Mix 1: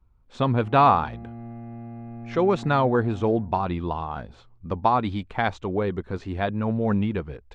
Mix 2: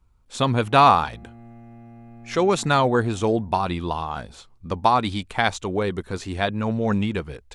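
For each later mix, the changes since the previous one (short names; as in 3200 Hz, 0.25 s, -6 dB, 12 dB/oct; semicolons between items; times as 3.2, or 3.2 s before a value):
background -7.0 dB; master: remove tape spacing loss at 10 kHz 28 dB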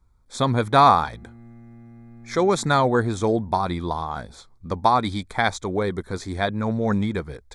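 background: add bell 690 Hz -11.5 dB 0.72 oct; master: add Butterworth band-stop 2800 Hz, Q 2.9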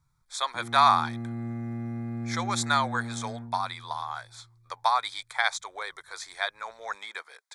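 speech: add Bessel high-pass 1200 Hz, order 4; background +11.5 dB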